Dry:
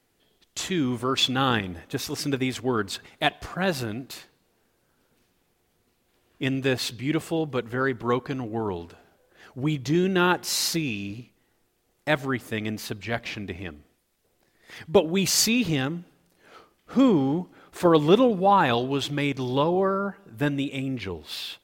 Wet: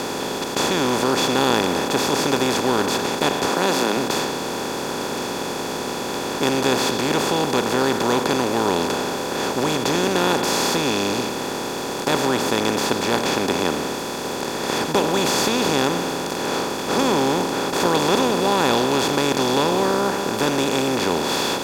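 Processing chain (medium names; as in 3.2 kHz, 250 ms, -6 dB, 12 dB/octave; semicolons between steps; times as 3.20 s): spectral levelling over time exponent 0.2; 3.48–3.97 s: high-pass 160 Hz 24 dB/octave; trim -7.5 dB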